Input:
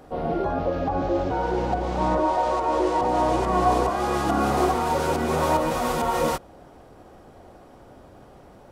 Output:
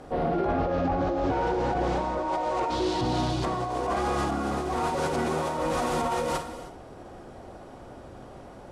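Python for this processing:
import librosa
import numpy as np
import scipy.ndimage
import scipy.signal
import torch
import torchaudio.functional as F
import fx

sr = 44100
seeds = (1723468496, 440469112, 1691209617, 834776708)

y = fx.graphic_eq(x, sr, hz=(125, 500, 1000, 2000, 4000, 8000), db=(9, -11, -7, -6, 10, -4), at=(2.7, 3.44))
y = fx.room_flutter(y, sr, wall_m=9.8, rt60_s=0.26)
y = fx.over_compress(y, sr, threshold_db=-26.0, ratio=-1.0)
y = 10.0 ** (-19.5 / 20.0) * np.tanh(y / 10.0 ** (-19.5 / 20.0))
y = scipy.signal.sosfilt(scipy.signal.butter(4, 11000.0, 'lowpass', fs=sr, output='sos'), y)
y = fx.rev_gated(y, sr, seeds[0], gate_ms=340, shape='flat', drr_db=9.5)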